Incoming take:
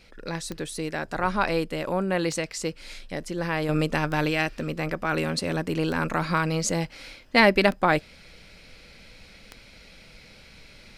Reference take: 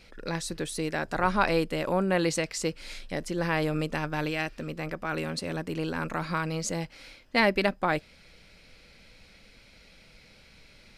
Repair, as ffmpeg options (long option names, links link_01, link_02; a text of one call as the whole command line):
ffmpeg -i in.wav -af "adeclick=threshold=4,asetnsamples=nb_out_samples=441:pad=0,asendcmd='3.69 volume volume -5.5dB',volume=0dB" out.wav